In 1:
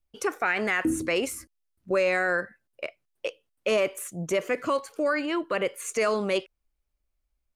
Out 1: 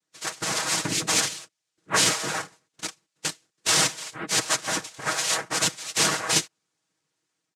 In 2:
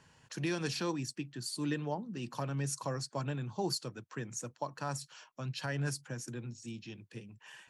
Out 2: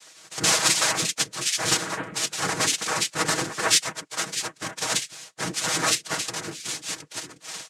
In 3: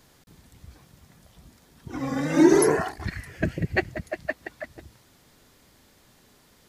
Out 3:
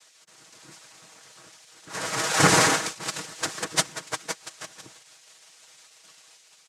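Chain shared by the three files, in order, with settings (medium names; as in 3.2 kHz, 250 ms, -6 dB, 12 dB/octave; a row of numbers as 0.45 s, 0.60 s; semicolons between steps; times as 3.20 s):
spectral gate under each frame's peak -15 dB weak; noise-vocoded speech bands 3; level rider gain up to 4 dB; treble shelf 4.4 kHz +5.5 dB; comb 6.3 ms, depth 57%; normalise loudness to -24 LUFS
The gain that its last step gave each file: +6.0 dB, +17.0 dB, +4.0 dB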